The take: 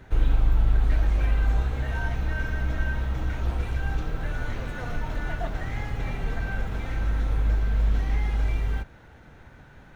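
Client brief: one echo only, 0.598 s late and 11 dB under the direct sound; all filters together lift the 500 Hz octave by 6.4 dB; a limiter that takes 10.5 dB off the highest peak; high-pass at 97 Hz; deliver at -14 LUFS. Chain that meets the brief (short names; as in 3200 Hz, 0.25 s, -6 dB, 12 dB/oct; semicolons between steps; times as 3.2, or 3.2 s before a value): HPF 97 Hz; bell 500 Hz +8 dB; limiter -28.5 dBFS; echo 0.598 s -11 dB; gain +23 dB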